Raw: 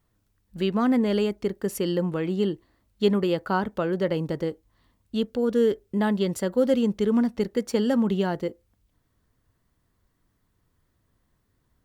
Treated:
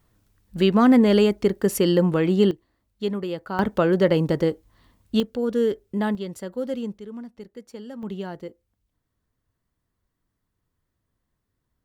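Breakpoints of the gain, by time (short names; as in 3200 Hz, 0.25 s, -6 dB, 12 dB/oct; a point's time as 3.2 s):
+6.5 dB
from 2.51 s -5 dB
from 3.59 s +6.5 dB
from 5.2 s -0.5 dB
from 6.15 s -7 dB
from 6.98 s -15 dB
from 8.03 s -7.5 dB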